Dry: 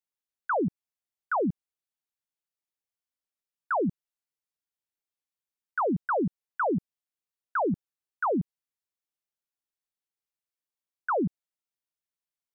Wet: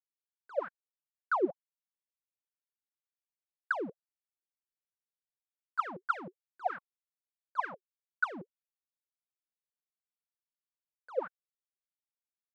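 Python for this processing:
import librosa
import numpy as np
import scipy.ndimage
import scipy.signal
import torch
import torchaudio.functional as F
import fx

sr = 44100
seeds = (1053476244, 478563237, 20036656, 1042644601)

y = fx.leveller(x, sr, passes=5)
y = fx.wah_lfo(y, sr, hz=3.3, low_hz=360.0, high_hz=1600.0, q=12.0)
y = y * librosa.db_to_amplitude(4.5)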